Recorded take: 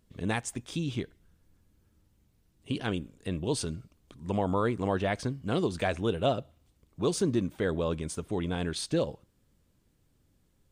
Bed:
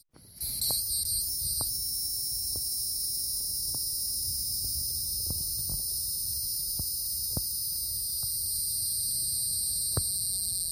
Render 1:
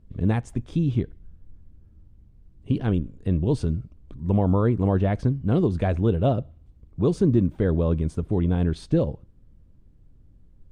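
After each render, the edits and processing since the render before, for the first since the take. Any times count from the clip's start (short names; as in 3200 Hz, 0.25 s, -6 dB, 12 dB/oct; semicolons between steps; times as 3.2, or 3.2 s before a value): tilt -4 dB/oct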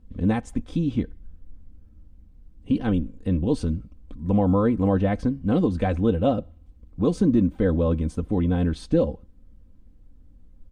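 comb 3.9 ms, depth 66%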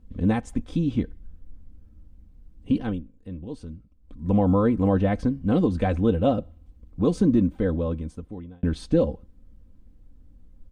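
2.73–4.29 dip -13 dB, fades 0.30 s; 7.31–8.63 fade out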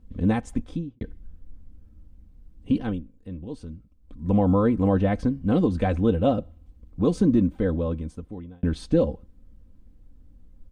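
0.59–1.01 studio fade out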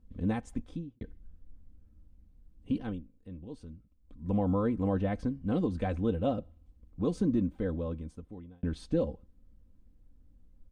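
gain -8.5 dB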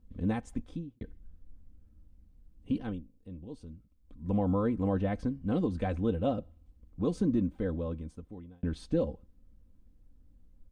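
3–3.71 bell 1700 Hz -6.5 dB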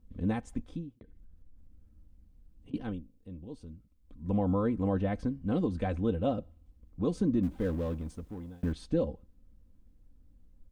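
0.98–2.74 compressor 10:1, threshold -48 dBFS; 7.43–8.73 G.711 law mismatch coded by mu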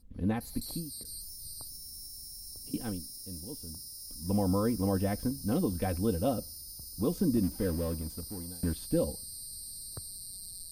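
add bed -13.5 dB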